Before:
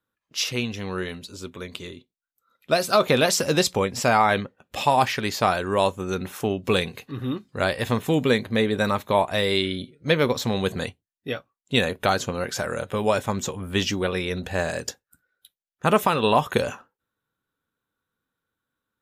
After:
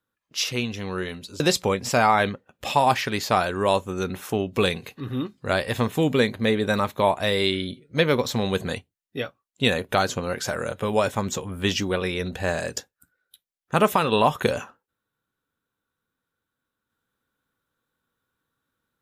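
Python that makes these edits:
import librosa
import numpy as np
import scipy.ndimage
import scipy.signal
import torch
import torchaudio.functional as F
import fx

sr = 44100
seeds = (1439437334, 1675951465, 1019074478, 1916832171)

y = fx.edit(x, sr, fx.cut(start_s=1.4, length_s=2.11), tone=tone)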